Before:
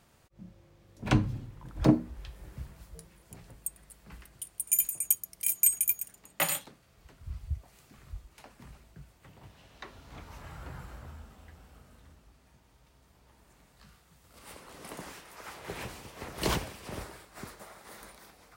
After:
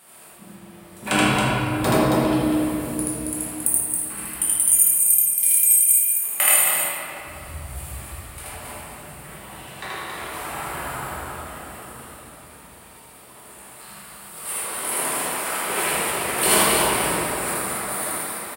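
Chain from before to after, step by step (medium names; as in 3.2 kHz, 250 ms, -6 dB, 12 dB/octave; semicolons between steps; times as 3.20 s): high-pass 700 Hz 6 dB/octave; resonant high shelf 7.5 kHz +7 dB, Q 3; compression 6:1, threshold -30 dBFS, peak gain reduction 19.5 dB; loudspeakers at several distances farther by 27 m 0 dB, 94 m -4 dB; simulated room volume 140 m³, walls hard, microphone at 1.1 m; trim +9 dB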